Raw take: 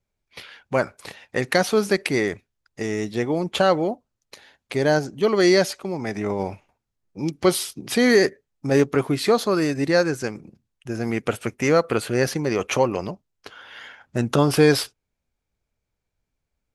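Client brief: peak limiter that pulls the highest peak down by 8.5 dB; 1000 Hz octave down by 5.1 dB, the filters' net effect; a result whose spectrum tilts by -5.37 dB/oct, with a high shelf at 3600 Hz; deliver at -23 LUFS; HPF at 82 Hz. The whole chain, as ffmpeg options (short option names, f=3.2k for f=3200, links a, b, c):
-af "highpass=82,equalizer=f=1k:t=o:g=-7,highshelf=f=3.6k:g=-5,volume=4dB,alimiter=limit=-10.5dB:level=0:latency=1"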